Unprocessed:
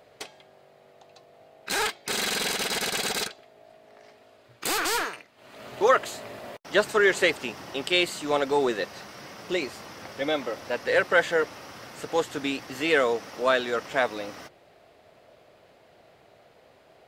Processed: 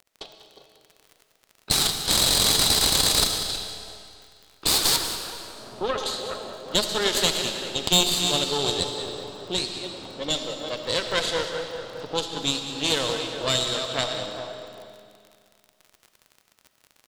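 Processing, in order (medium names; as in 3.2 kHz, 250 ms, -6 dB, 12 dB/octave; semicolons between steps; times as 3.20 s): backward echo that repeats 198 ms, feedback 55%, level -9 dB; gate -47 dBFS, range -33 dB; resonant high shelf 2.8 kHz +11.5 dB, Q 3; level-controlled noise filter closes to 870 Hz, open at -13.5 dBFS; compression 1.5:1, threshold -35 dBFS, peak gain reduction 10 dB; Chebyshev shaper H 6 -11 dB, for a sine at -5 dBFS; crackle 45 per s -36 dBFS; 4.96–5.98 s: distance through air 350 m; delay 193 ms -14 dB; on a send at -7 dB: reverberation RT60 2.3 s, pre-delay 30 ms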